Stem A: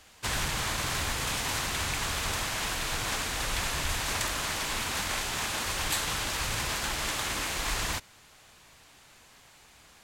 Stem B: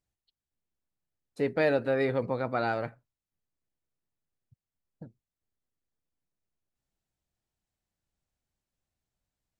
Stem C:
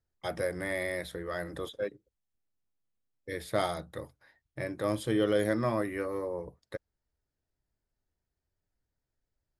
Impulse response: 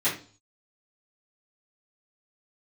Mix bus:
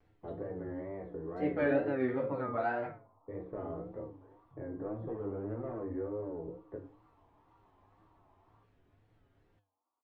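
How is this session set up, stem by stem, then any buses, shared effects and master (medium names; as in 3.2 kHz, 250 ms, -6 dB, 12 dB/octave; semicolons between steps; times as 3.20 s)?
-14.5 dB, 0.65 s, no send, comb filter that takes the minimum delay 1.1 ms; FFT band-pass 230–1400 Hz; compression, threshold -41 dBFS, peak gain reduction 6.5 dB
0.0 dB, 0.00 s, send -6.5 dB, upward compressor, threshold -44 dBFS
-5.5 dB, 0.00 s, send -11.5 dB, saturation -27.5 dBFS, distortion -10 dB; resonant low-pass 410 Hz, resonance Q 4.9; spectrum-flattening compressor 2:1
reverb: on, RT60 0.40 s, pre-delay 3 ms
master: low-pass 1.8 kHz 12 dB/octave; feedback comb 100 Hz, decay 0.31 s, harmonics odd, mix 80%; wow and flutter 110 cents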